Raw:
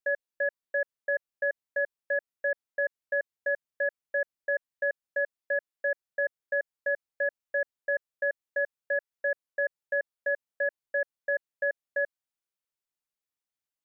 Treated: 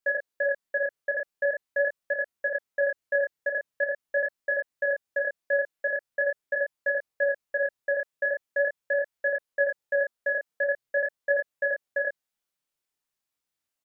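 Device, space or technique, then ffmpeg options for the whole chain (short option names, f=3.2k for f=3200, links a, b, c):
double-tracked vocal: -filter_complex "[0:a]asplit=2[a][b];[b]adelay=34,volume=-3dB[c];[a][c]amix=inputs=2:normalize=0,flanger=delay=20:depth=7.5:speed=0.43,volume=7dB"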